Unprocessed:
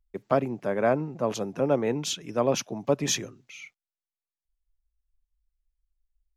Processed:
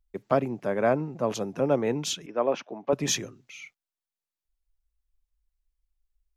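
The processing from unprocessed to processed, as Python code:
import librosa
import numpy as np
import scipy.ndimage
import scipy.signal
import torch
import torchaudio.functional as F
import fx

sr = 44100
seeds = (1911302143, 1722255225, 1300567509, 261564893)

y = fx.bandpass_edges(x, sr, low_hz=330.0, high_hz=2300.0, at=(2.26, 2.93))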